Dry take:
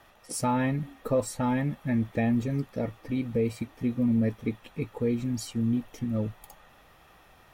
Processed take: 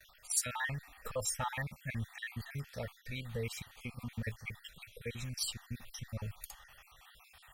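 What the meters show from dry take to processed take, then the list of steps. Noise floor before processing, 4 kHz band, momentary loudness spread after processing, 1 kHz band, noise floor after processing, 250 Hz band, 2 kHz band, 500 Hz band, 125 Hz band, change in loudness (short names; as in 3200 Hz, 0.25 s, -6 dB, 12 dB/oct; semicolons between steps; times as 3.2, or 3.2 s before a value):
-57 dBFS, +2.5 dB, 16 LU, -9.5 dB, -63 dBFS, -21.5 dB, -1.0 dB, -14.0 dB, -10.5 dB, -10.5 dB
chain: random spectral dropouts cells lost 48%; gate with hold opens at -54 dBFS; passive tone stack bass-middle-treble 10-0-10; gain +6.5 dB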